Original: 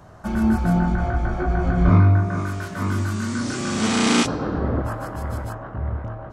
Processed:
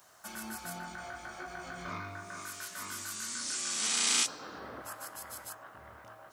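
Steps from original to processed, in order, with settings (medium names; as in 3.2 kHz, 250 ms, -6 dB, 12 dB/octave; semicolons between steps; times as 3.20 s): differentiator; in parallel at -3 dB: compression, threshold -47 dBFS, peak gain reduction 20.5 dB; on the sum: word length cut 12-bit, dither triangular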